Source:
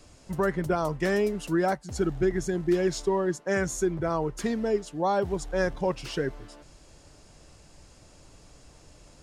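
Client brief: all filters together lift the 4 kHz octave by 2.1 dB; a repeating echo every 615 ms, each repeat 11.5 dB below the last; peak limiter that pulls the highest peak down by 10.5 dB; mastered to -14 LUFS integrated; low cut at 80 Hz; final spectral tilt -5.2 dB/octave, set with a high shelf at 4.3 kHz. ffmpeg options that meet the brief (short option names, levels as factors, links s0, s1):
-af "highpass=80,equalizer=f=4000:t=o:g=8.5,highshelf=f=4300:g=-9,alimiter=level_in=1.12:limit=0.0631:level=0:latency=1,volume=0.891,aecho=1:1:615|1230|1845:0.266|0.0718|0.0194,volume=10.6"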